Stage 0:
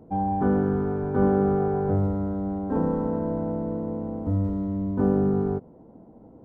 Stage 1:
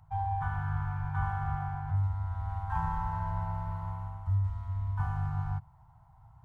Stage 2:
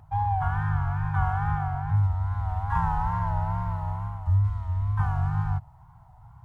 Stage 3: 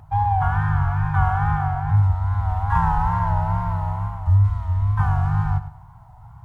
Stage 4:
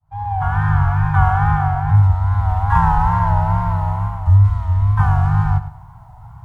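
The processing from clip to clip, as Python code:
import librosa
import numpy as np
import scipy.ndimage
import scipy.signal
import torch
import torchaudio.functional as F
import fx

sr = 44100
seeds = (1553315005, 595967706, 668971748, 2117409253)

y1 = scipy.signal.sosfilt(scipy.signal.cheby2(4, 40, [200.0, 570.0], 'bandstop', fs=sr, output='sos'), x)
y1 = fx.dynamic_eq(y1, sr, hz=1300.0, q=5.3, threshold_db=-57.0, ratio=4.0, max_db=-6)
y1 = fx.rider(y1, sr, range_db=5, speed_s=0.5)
y1 = y1 * librosa.db_to_amplitude(1.5)
y2 = fx.wow_flutter(y1, sr, seeds[0], rate_hz=2.1, depth_cents=87.0)
y2 = y2 * librosa.db_to_amplitude(6.5)
y3 = fx.echo_feedback(y2, sr, ms=103, feedback_pct=32, wet_db=-13.5)
y3 = y3 * librosa.db_to_amplitude(6.0)
y4 = fx.fade_in_head(y3, sr, length_s=0.71)
y4 = y4 * librosa.db_to_amplitude(5.0)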